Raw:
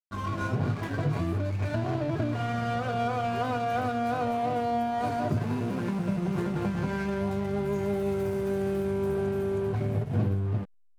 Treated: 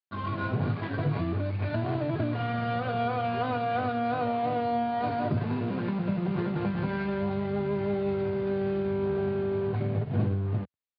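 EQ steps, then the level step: high-pass 81 Hz 24 dB/octave; steep low-pass 4.6 kHz 72 dB/octave; 0.0 dB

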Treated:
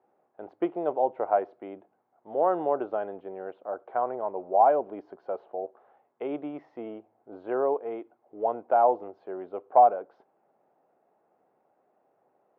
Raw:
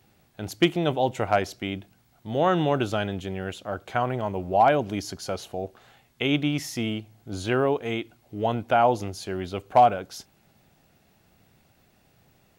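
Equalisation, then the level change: Butterworth band-pass 650 Hz, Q 0.96; distance through air 190 m; 0.0 dB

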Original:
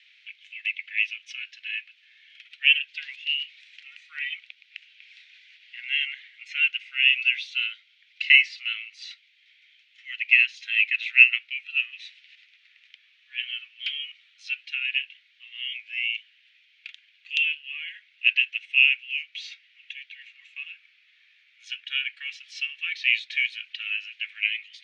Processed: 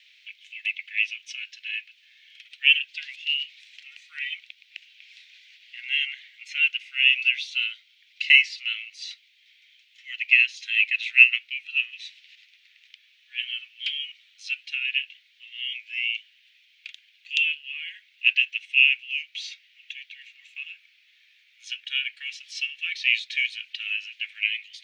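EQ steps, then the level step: tilt EQ +5 dB/octave; -6.5 dB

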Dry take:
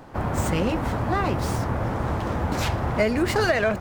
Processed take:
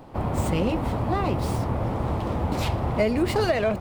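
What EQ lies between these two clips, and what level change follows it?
fifteen-band graphic EQ 1.6 kHz -9 dB, 6.3 kHz -6 dB, 16 kHz -4 dB; 0.0 dB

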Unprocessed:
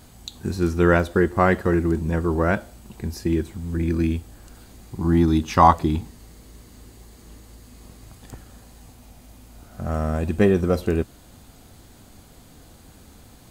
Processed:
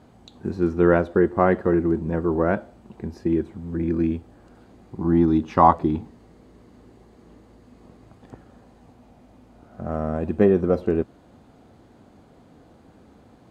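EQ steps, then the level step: band-pass filter 420 Hz, Q 0.52; +1.5 dB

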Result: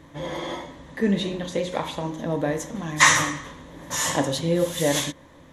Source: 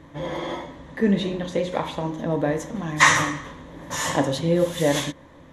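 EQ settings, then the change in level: treble shelf 3.9 kHz +8 dB; -2.0 dB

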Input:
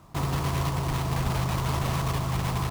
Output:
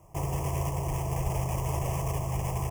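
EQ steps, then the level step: Butterworth band-stop 4 kHz, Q 1.4; peaking EQ 280 Hz +6 dB 0.61 oct; static phaser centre 600 Hz, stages 4; 0.0 dB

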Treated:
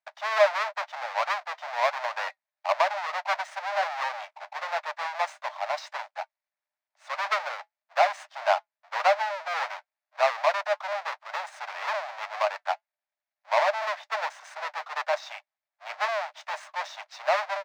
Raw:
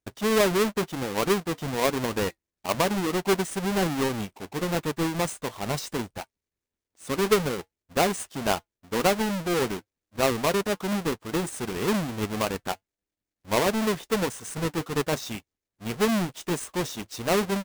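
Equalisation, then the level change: rippled Chebyshev high-pass 590 Hz, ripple 3 dB; distance through air 220 m; peaking EQ 3 kHz -6.5 dB 0.57 oct; +6.5 dB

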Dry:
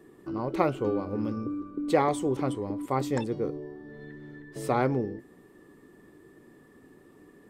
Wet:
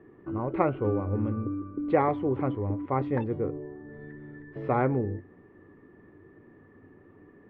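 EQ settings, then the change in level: low-pass 2.3 kHz 24 dB/octave; peaking EQ 96 Hz +13.5 dB 0.32 oct; 0.0 dB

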